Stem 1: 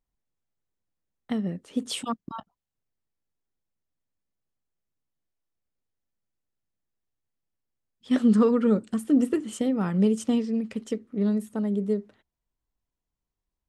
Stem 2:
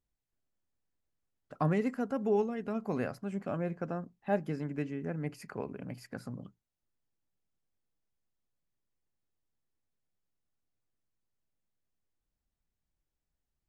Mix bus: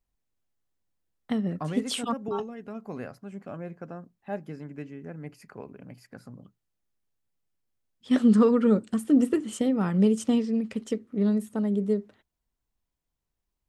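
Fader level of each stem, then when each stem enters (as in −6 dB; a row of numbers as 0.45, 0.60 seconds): +0.5, −3.5 decibels; 0.00, 0.00 seconds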